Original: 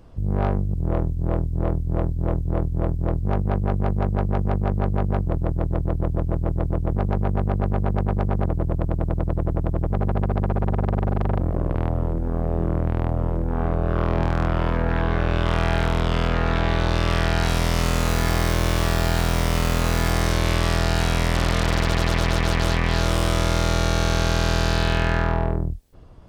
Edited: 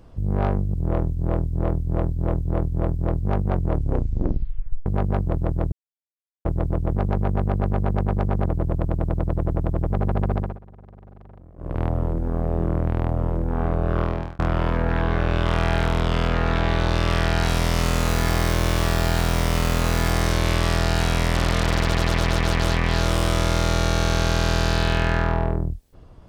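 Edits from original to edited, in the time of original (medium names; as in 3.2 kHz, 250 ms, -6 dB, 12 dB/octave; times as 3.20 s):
3.45 s: tape stop 1.41 s
5.72–6.45 s: mute
10.34–11.82 s: dip -23.5 dB, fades 0.25 s
14.00–14.39 s: fade out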